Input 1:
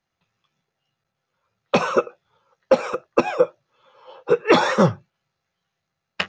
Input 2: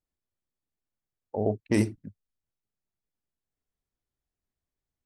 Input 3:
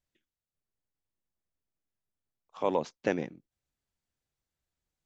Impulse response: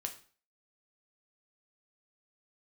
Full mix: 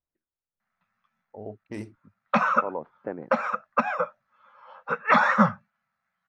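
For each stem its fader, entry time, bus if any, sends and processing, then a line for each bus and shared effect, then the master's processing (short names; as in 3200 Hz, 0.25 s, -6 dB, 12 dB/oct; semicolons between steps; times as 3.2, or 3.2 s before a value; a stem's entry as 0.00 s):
-7.0 dB, 0.60 s, no send, EQ curve 150 Hz 0 dB, 220 Hz +13 dB, 350 Hz -21 dB, 600 Hz +4 dB, 880 Hz +5 dB, 1300 Hz +12 dB, 2000 Hz +8 dB, 2900 Hz -4 dB, 6900 Hz -8 dB, 10000 Hz -12 dB
-9.0 dB, 0.00 s, no send, LPF 3000 Hz 6 dB/oct
-2.0 dB, 0.00 s, no send, LPF 1400 Hz 24 dB/oct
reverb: off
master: low shelf 440 Hz -5 dB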